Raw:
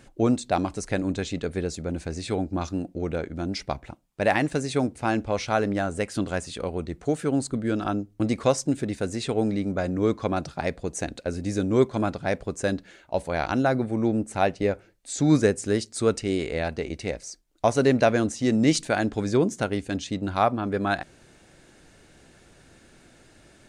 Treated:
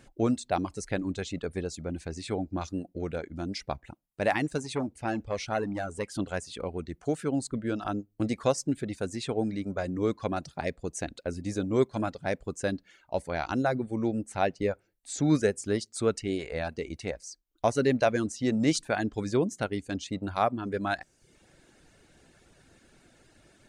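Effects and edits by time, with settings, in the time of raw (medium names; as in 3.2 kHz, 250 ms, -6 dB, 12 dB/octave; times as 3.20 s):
4.58–6.19 s: transformer saturation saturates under 790 Hz
whole clip: reverb removal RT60 0.62 s; trim -4 dB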